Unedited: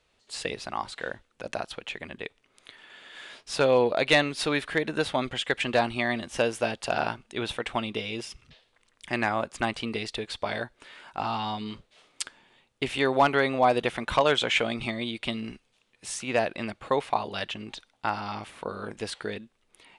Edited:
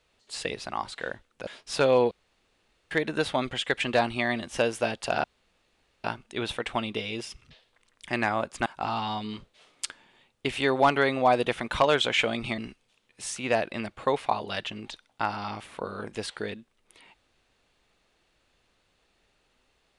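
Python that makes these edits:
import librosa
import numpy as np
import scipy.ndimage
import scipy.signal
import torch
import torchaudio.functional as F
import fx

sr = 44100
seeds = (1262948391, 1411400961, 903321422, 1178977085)

y = fx.edit(x, sr, fx.cut(start_s=1.47, length_s=1.8),
    fx.room_tone_fill(start_s=3.91, length_s=0.8),
    fx.insert_room_tone(at_s=7.04, length_s=0.8),
    fx.cut(start_s=9.66, length_s=1.37),
    fx.cut(start_s=14.95, length_s=0.47), tone=tone)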